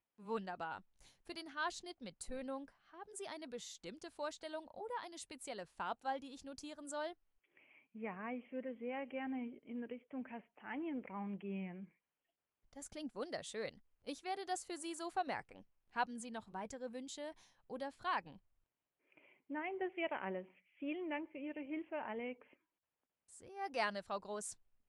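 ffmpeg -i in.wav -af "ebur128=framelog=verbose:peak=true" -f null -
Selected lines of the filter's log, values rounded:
Integrated loudness:
  I:         -44.6 LUFS
  Threshold: -55.1 LUFS
Loudness range:
  LRA:         3.4 LU
  Threshold: -65.5 LUFS
  LRA low:   -47.2 LUFS
  LRA high:  -43.8 LUFS
True peak:
  Peak:      -23.6 dBFS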